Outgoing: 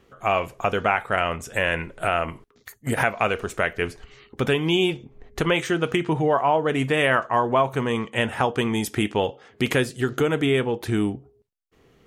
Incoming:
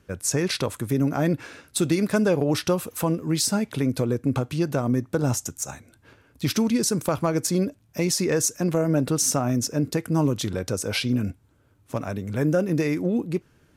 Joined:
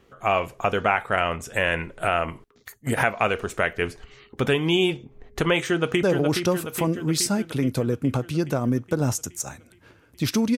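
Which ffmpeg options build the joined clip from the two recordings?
-filter_complex "[0:a]apad=whole_dur=10.57,atrim=end=10.57,atrim=end=6.032[s0];[1:a]atrim=start=2.248:end=6.79[s1];[s0][s1]acrossfade=d=0.004:c1=hsin:c2=hsin,asplit=2[s2][s3];[s3]afade=t=in:st=5.67:d=0.01,afade=t=out:st=6.03:d=0.01,aecho=0:1:420|840|1260|1680|2100|2520|2940|3360|3780|4200:0.501187|0.325772|0.211752|0.137639|0.0894651|0.0581523|0.037799|0.0245693|0.0159701|0.0103805[s4];[s2][s4]amix=inputs=2:normalize=0"

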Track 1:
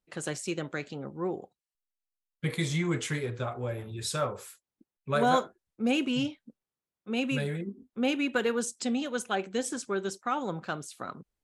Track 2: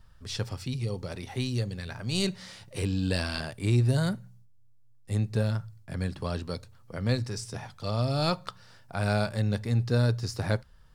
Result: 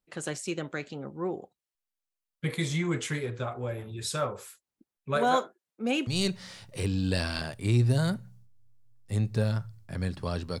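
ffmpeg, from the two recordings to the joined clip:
-filter_complex "[0:a]asettb=1/sr,asplit=3[s0][s1][s2];[s0]atrim=end=5.174[s3];[s1]atrim=start=5.17:end=6.07,asetpts=PTS-STARTPTS,afade=t=in:d=0.004:c=qsin,afade=t=out:st=0.896:d=0.004:c=qsin,highpass=240[s4];[s2]atrim=start=6.066[s5];[s3][s4]acrossfade=d=0.004:c1=hsin:c2=qsin[s6];[s6][s5]acrossfade=d=0.004:c1=qsin:c2=hsin,apad=whole_dur=10.6,atrim=end=10.6,atrim=end=6.072[s7];[1:a]atrim=start=2.058:end=6.59[s8];[s7][s8]acrossfade=d=0.004:c1=hsin:c2=hsin"

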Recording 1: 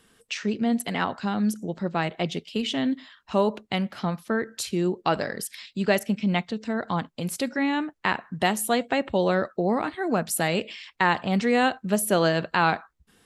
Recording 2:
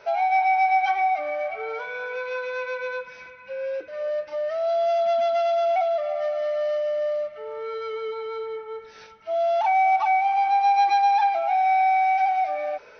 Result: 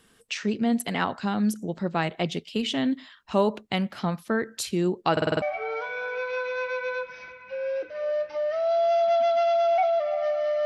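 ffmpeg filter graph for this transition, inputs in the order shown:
-filter_complex "[0:a]apad=whole_dur=10.65,atrim=end=10.65,asplit=6[s0][s1][s2][s3][s4][s5];[s0]atrim=end=5.172[s6];[s1]atrim=start=5.118:end=5.172[s7];[s2]atrim=start=5.118:end=5.172[s8];[s3]atrim=start=5.118:end=5.172[s9];[s4]atrim=start=5.118:end=5.172[s10];[s5]atrim=start=5.118:end=5.172[s11];[1:a]atrim=start=1.398:end=6.63[s12];[s6][s7]acrossfade=d=0.004:c1=hsin:c2=hsin[s13];[s13][s8]acrossfade=d=0.004:c1=hsin:c2=hsin[s14];[s14][s9]acrossfade=d=0.004:c1=hsin:c2=hsin[s15];[s15][s10]acrossfade=d=0.004:c1=hsin:c2=hsin[s16];[s16][s11]acrossfade=d=0.004:c1=hsin:c2=hsin[s17];[s17][s12]acrossfade=d=0.004:c1=hsin:c2=hsin"

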